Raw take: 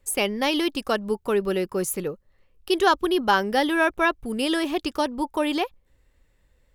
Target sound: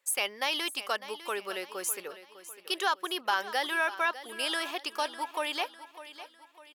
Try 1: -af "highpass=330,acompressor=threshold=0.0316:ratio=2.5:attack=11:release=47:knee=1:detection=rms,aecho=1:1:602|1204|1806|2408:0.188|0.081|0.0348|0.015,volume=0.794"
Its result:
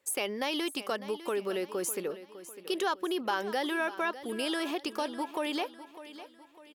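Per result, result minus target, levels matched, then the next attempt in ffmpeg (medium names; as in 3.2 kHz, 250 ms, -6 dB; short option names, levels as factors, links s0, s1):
250 Hz band +11.0 dB; compression: peak gain reduction +5 dB
-af "highpass=840,acompressor=threshold=0.0316:ratio=2.5:attack=11:release=47:knee=1:detection=rms,aecho=1:1:602|1204|1806|2408:0.188|0.081|0.0348|0.015,volume=0.794"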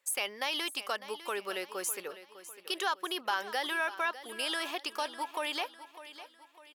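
compression: peak gain reduction +3.5 dB
-af "highpass=840,acompressor=threshold=0.0631:ratio=2.5:attack=11:release=47:knee=1:detection=rms,aecho=1:1:602|1204|1806|2408:0.188|0.081|0.0348|0.015,volume=0.794"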